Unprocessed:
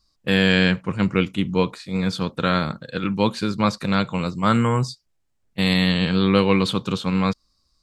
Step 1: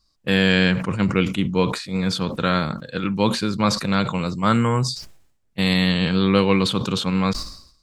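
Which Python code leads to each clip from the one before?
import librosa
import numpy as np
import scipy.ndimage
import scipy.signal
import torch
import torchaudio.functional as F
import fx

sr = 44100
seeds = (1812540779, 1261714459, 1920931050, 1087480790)

y = fx.sustainer(x, sr, db_per_s=86.0)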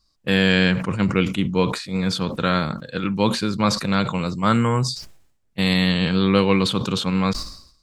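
y = x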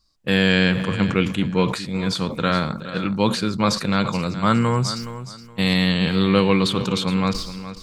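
y = fx.echo_feedback(x, sr, ms=419, feedback_pct=25, wet_db=-13)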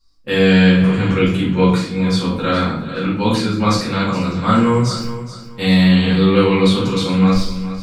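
y = fx.room_shoebox(x, sr, seeds[0], volume_m3=89.0, walls='mixed', distance_m=2.2)
y = F.gain(torch.from_numpy(y), -6.5).numpy()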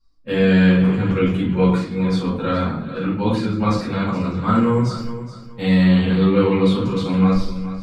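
y = fx.spec_quant(x, sr, step_db=15)
y = fx.high_shelf(y, sr, hz=2600.0, db=-11.0)
y = F.gain(torch.from_numpy(y), -2.0).numpy()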